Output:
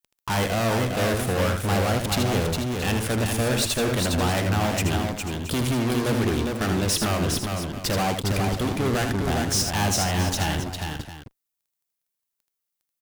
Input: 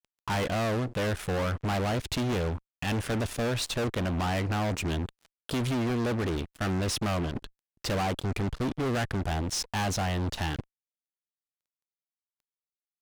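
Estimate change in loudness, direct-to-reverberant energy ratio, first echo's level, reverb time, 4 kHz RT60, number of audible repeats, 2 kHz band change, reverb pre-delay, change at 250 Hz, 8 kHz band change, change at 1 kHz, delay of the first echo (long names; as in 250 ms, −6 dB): +6.0 dB, no reverb audible, −6.5 dB, no reverb audible, no reverb audible, 4, +6.5 dB, no reverb audible, +5.5 dB, +10.5 dB, +6.0 dB, 79 ms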